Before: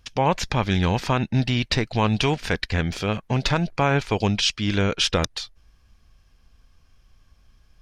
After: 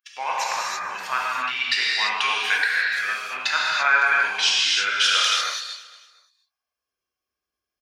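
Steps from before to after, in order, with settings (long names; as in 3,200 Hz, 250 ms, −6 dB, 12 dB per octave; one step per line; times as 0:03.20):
spectral dynamics exaggerated over time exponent 1.5
0:00.45–0:00.89: low-pass filter 2,300 Hz → 1,100 Hz 24 dB per octave
on a send: repeating echo 232 ms, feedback 39%, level −16.5 dB
on the sum: reverb whose tail is shaped and stops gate 370 ms flat, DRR −5.5 dB
high-pass filter sweep 1,500 Hz → 400 Hz, 0:06.17–0:06.97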